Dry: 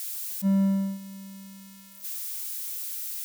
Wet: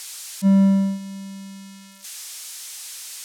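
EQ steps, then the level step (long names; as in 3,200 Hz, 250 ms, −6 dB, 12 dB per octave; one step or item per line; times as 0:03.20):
band-pass filter 110–7,900 Hz
+8.0 dB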